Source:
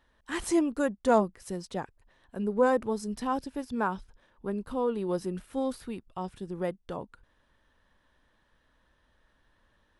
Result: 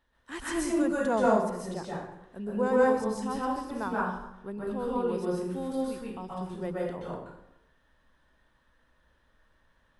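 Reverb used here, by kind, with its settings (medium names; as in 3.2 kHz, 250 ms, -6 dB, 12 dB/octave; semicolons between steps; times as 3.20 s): plate-style reverb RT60 0.84 s, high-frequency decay 0.65×, pre-delay 115 ms, DRR -6 dB; trim -6 dB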